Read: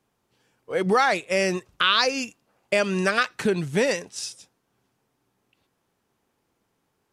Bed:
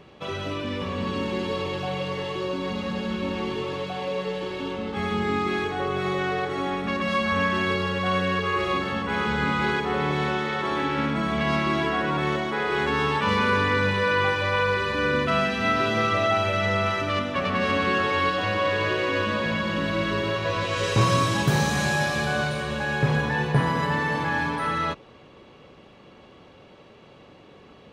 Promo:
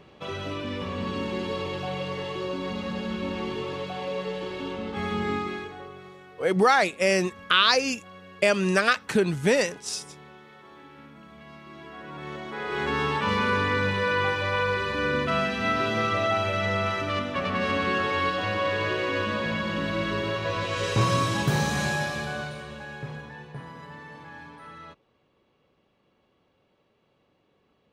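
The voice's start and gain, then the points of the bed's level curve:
5.70 s, +0.5 dB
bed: 0:05.32 −2.5 dB
0:06.22 −23 dB
0:11.61 −23 dB
0:12.90 −2.5 dB
0:21.85 −2.5 dB
0:23.47 −18.5 dB

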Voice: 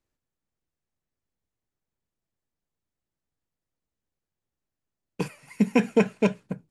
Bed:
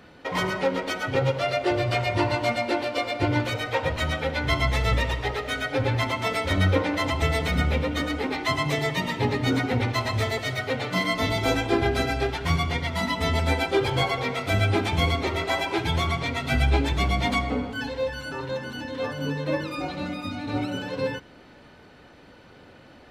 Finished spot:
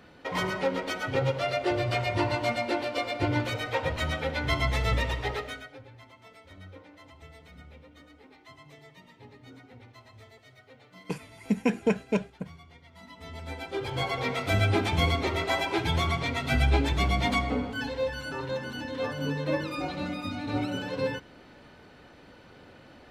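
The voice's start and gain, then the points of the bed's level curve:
5.90 s, −4.5 dB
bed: 0:05.39 −3.5 dB
0:05.86 −26.5 dB
0:12.84 −26.5 dB
0:14.27 −2 dB

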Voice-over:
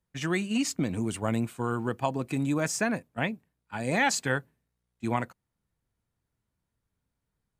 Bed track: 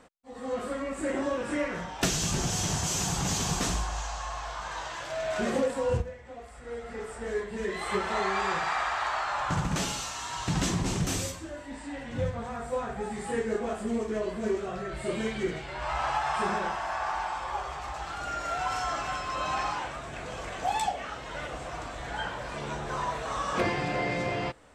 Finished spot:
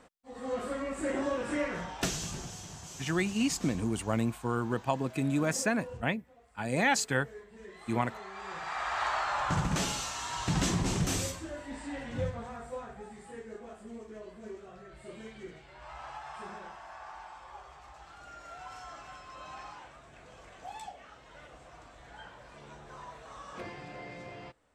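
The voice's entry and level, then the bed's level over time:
2.85 s, −1.5 dB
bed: 0:01.91 −2 dB
0:02.66 −16.5 dB
0:08.31 −16.5 dB
0:09.02 −1 dB
0:12.04 −1 dB
0:13.32 −15 dB

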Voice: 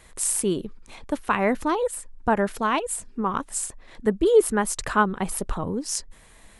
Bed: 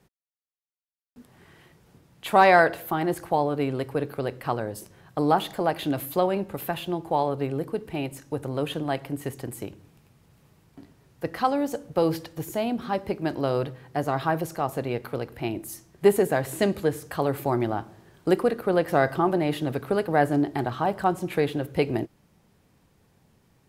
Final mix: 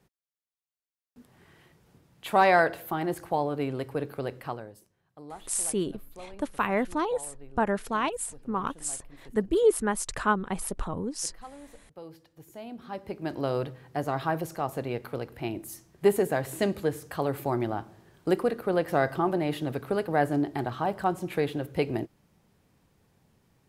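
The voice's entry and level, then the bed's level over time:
5.30 s, −4.5 dB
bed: 0:04.39 −4 dB
0:04.95 −22 dB
0:12.13 −22 dB
0:13.41 −3.5 dB

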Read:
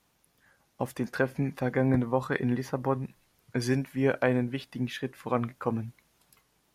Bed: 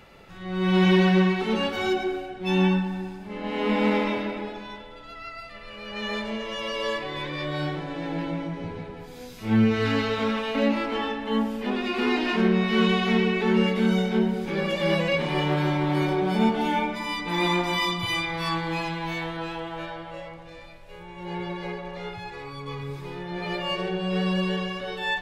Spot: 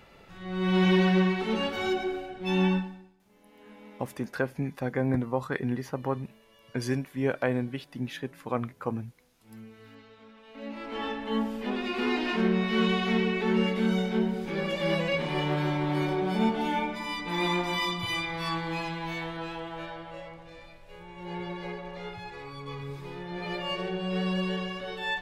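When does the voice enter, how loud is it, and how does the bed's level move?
3.20 s, −2.0 dB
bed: 0:02.77 −3.5 dB
0:03.16 −27.5 dB
0:10.34 −27.5 dB
0:11.06 −4 dB

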